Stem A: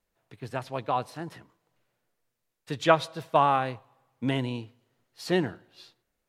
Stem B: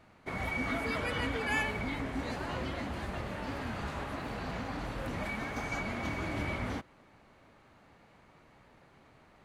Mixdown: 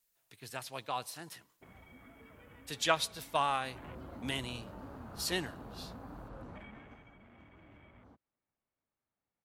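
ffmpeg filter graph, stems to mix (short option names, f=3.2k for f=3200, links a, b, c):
-filter_complex "[0:a]crystalizer=i=9.5:c=0,volume=-13.5dB[a];[1:a]afwtdn=0.0112,acrossover=split=440|2000[b][c][d];[b]acompressor=threshold=-41dB:ratio=4[e];[c]acompressor=threshold=-47dB:ratio=4[f];[d]acompressor=threshold=-52dB:ratio=4[g];[e][f][g]amix=inputs=3:normalize=0,adelay=1350,volume=-5dB,afade=t=in:st=3.62:d=0.28:silence=0.298538,afade=t=out:st=6.4:d=0.68:silence=0.251189[h];[a][h]amix=inputs=2:normalize=0"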